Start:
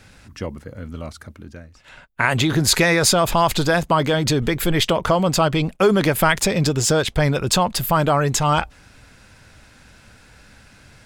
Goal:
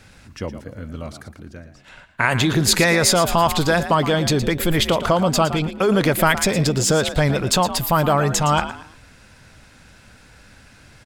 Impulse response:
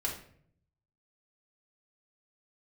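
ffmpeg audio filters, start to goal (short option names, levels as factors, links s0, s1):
-filter_complex "[0:a]asplit=3[s0][s1][s2];[s0]afade=t=out:st=5.44:d=0.02[s3];[s1]acompressor=threshold=0.126:ratio=2,afade=t=in:st=5.44:d=0.02,afade=t=out:st=5.87:d=0.02[s4];[s2]afade=t=in:st=5.87:d=0.02[s5];[s3][s4][s5]amix=inputs=3:normalize=0,asplit=2[s6][s7];[s7]asplit=3[s8][s9][s10];[s8]adelay=114,afreqshift=55,volume=0.251[s11];[s9]adelay=228,afreqshift=110,volume=0.0776[s12];[s10]adelay=342,afreqshift=165,volume=0.0243[s13];[s11][s12][s13]amix=inputs=3:normalize=0[s14];[s6][s14]amix=inputs=2:normalize=0"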